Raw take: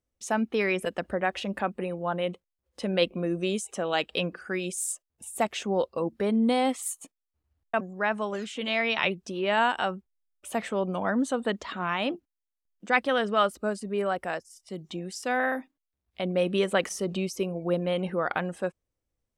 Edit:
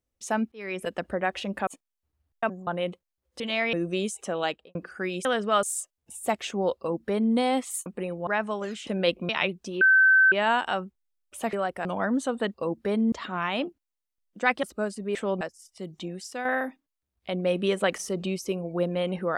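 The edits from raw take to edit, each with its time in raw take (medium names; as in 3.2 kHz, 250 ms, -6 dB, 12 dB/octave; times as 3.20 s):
0.52–0.92 s: fade in
1.67–2.08 s: swap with 6.98–7.98 s
2.81–3.23 s: swap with 8.58–8.91 s
3.90–4.25 s: studio fade out
5.89–6.47 s: copy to 11.59 s
9.43 s: add tone 1.54 kHz -14.5 dBFS 0.51 s
10.64–10.90 s: swap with 14.00–14.32 s
13.10–13.48 s: move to 4.75 s
15.03–15.36 s: fade out, to -7 dB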